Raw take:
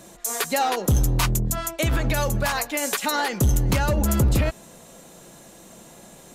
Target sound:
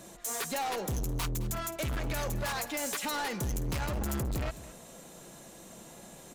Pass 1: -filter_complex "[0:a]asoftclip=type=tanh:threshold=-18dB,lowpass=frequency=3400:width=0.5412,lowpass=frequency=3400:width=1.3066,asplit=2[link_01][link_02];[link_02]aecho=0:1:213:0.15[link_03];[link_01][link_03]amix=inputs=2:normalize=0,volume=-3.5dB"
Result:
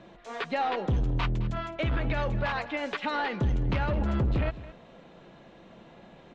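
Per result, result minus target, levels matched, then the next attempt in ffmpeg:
soft clipping: distortion −9 dB; 4,000 Hz band −5.0 dB
-filter_complex "[0:a]asoftclip=type=tanh:threshold=-27dB,lowpass=frequency=3400:width=0.5412,lowpass=frequency=3400:width=1.3066,asplit=2[link_01][link_02];[link_02]aecho=0:1:213:0.15[link_03];[link_01][link_03]amix=inputs=2:normalize=0,volume=-3.5dB"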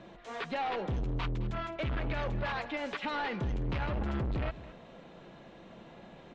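4,000 Hz band −3.0 dB
-filter_complex "[0:a]asoftclip=type=tanh:threshold=-27dB,asplit=2[link_01][link_02];[link_02]aecho=0:1:213:0.15[link_03];[link_01][link_03]amix=inputs=2:normalize=0,volume=-3.5dB"

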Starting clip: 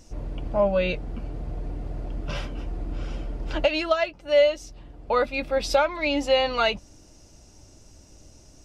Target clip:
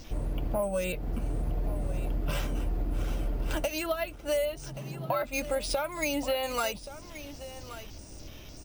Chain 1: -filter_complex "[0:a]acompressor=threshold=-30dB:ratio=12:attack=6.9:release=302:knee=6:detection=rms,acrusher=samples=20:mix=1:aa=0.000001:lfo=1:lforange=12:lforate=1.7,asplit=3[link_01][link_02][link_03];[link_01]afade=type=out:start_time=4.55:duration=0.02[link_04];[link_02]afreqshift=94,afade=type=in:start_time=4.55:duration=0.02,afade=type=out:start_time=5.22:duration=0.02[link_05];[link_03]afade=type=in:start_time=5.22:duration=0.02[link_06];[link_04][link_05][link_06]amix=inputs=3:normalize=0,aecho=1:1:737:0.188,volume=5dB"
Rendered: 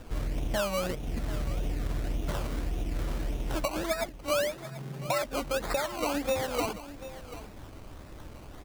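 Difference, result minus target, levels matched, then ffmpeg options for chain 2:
sample-and-hold swept by an LFO: distortion +11 dB; echo 391 ms early
-filter_complex "[0:a]acompressor=threshold=-30dB:ratio=12:attack=6.9:release=302:knee=6:detection=rms,acrusher=samples=4:mix=1:aa=0.000001:lfo=1:lforange=2.4:lforate=1.7,asplit=3[link_01][link_02][link_03];[link_01]afade=type=out:start_time=4.55:duration=0.02[link_04];[link_02]afreqshift=94,afade=type=in:start_time=4.55:duration=0.02,afade=type=out:start_time=5.22:duration=0.02[link_05];[link_03]afade=type=in:start_time=5.22:duration=0.02[link_06];[link_04][link_05][link_06]amix=inputs=3:normalize=0,aecho=1:1:1128:0.188,volume=5dB"

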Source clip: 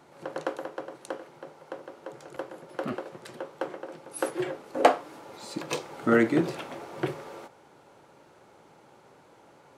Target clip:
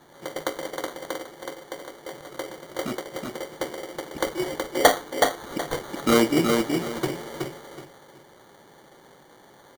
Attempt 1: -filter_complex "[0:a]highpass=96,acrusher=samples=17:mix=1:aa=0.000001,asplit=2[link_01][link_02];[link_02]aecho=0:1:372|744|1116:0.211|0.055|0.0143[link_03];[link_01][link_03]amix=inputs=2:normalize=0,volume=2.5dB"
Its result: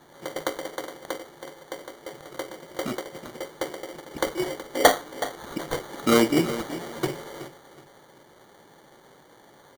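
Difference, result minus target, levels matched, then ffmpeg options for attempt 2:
echo-to-direct −9.5 dB
-filter_complex "[0:a]highpass=96,acrusher=samples=17:mix=1:aa=0.000001,asplit=2[link_01][link_02];[link_02]aecho=0:1:372|744|1116|1488:0.631|0.164|0.0427|0.0111[link_03];[link_01][link_03]amix=inputs=2:normalize=0,volume=2.5dB"

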